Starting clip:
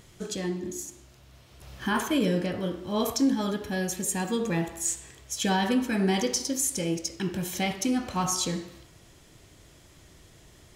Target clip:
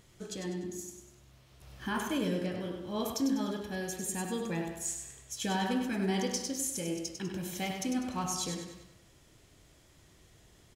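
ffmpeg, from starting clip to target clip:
-af "aecho=1:1:99|198|297|396|495:0.447|0.192|0.0826|0.0355|0.0153,volume=-7.5dB"

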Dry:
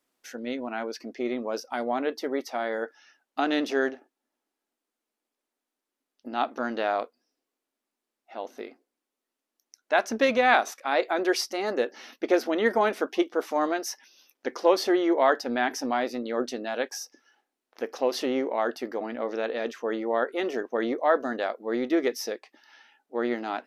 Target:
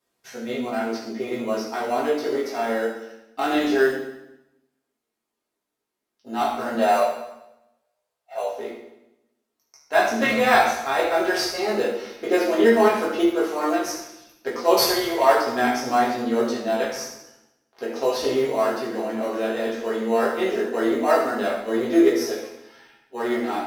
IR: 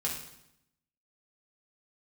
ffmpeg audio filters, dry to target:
-filter_complex "[0:a]asettb=1/sr,asplit=3[a][b][c];[a]atrim=end=14.774[d];[b]atrim=start=14.77:end=15.23,asetpts=PTS-STARTPTS,afade=t=in:d=0.004:c=qsin,afade=t=out:st=0.456:d=0.004:c=qsin,aemphasis=mode=production:type=riaa[e];[c]atrim=start=15.226[f];[d][e]acrossfade=d=0.004:c1=hsin:c2=qsin[g];[g][f]acrossfade=d=0.004:c1=qsin:c2=hsin,flanger=delay=16:depth=7.1:speed=0.13,asettb=1/sr,asplit=3[h][i][j];[h]atrim=end=6.754[k];[i]atrim=start=6.75:end=8.53,asetpts=PTS-STARTPTS,afade=t=in:d=0.004:c=qsin,afade=t=out:st=1.776:d=0.004:c=qsin,lowshelf=f=400:t=q:w=3:g=-11.5[l];[j]atrim=start=8.526[m];[k][l]acrossfade=d=0.004:c1=hsin:c2=qsin[n];[n][m]acrossfade=d=0.004:c1=qsin:c2=hsin,asplit=2[o][p];[p]acrusher=samples=13:mix=1:aa=0.000001,volume=-11.5dB[q];[o][q]amix=inputs=2:normalize=0[r];[1:a]atrim=start_sample=2205,asetrate=38367,aresample=44100[s];[r][s]afir=irnorm=-1:irlink=0,volume=1dB"

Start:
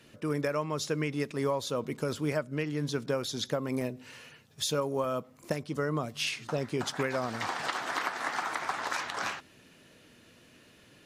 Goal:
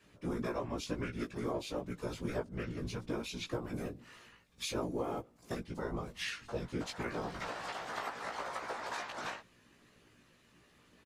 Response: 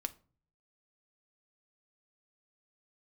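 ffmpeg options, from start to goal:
-filter_complex "[0:a]asplit=2[a][b];[b]asetrate=29433,aresample=44100,atempo=1.49831,volume=0dB[c];[a][c]amix=inputs=2:normalize=0,afftfilt=real='hypot(re,im)*cos(2*PI*random(0))':imag='hypot(re,im)*sin(2*PI*random(1))':win_size=512:overlap=0.75,asplit=2[d][e];[e]adelay=17,volume=-3dB[f];[d][f]amix=inputs=2:normalize=0,volume=-5.5dB"

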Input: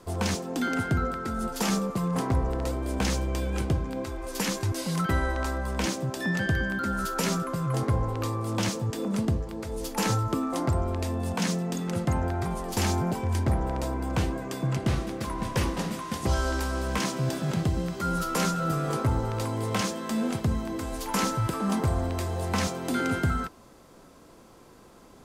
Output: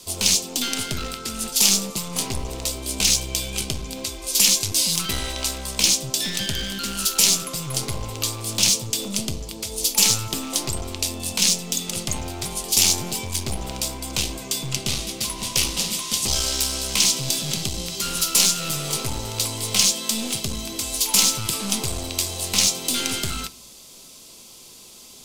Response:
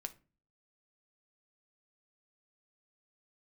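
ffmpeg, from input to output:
-filter_complex "[0:a]aeval=exprs='clip(val(0),-1,0.0355)':c=same,aexciter=amount=13.2:drive=3:freq=2.5k,asplit=2[a][b];[1:a]atrim=start_sample=2205,highshelf=f=7.2k:g=-7.5[c];[b][c]afir=irnorm=-1:irlink=0,volume=7.5dB[d];[a][d]amix=inputs=2:normalize=0,volume=-10.5dB"

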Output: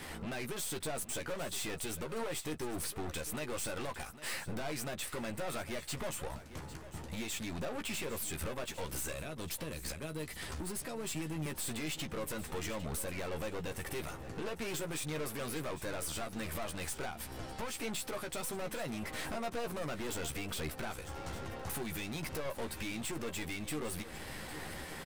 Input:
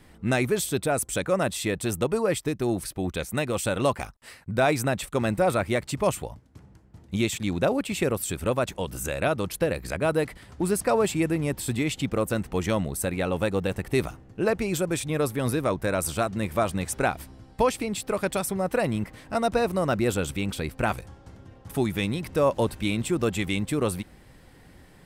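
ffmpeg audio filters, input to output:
-filter_complex "[0:a]lowshelf=f=380:g=-10.5,acompressor=threshold=-39dB:ratio=6,alimiter=level_in=10.5dB:limit=-24dB:level=0:latency=1:release=272,volume=-10.5dB,asettb=1/sr,asplit=3[a][b][c];[a]atrim=end=9.124[d];[b]atrim=start=9.12:end=11.46,asetpts=PTS-STARTPTS,afade=t=in:d=0.004:c=qsin,afade=t=out:st=2.336:d=0.004:c=qsin,acrossover=split=310|3000[e][f][g];[f]acompressor=threshold=-57dB:ratio=6[h];[e][h][g]amix=inputs=3:normalize=0[i];[c]atrim=start=11.456[j];[d][i]acrossfade=d=0.004:c1=hsin:c2=qsin[k];[k][j]acrossfade=d=0.004:c1=qsin:c2=hsin,aeval=exprs='(tanh(398*val(0)+0.45)-tanh(0.45))/398':c=same,asplit=2[l][m];[m]adelay=13,volume=-6.5dB[n];[l][n]amix=inputs=2:normalize=0,aecho=1:1:803|1606:0.188|0.0339,volume=14.5dB"

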